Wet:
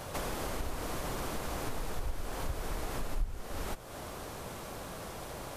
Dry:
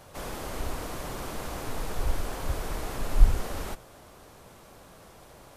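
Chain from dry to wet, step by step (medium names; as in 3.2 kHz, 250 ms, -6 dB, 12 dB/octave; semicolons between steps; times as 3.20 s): compression 4:1, threshold -43 dBFS, peak gain reduction 27.5 dB; trim +8.5 dB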